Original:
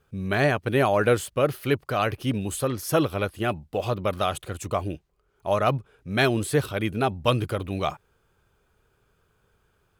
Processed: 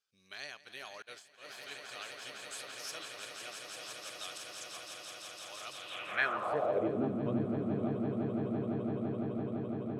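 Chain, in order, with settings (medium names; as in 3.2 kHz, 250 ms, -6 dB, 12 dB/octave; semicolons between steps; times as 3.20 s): echo with a slow build-up 169 ms, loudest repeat 8, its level -8 dB; 1.02–1.46 s: expander -14 dBFS; band-pass sweep 5.1 kHz -> 250 Hz, 5.72–7.08 s; trim -4 dB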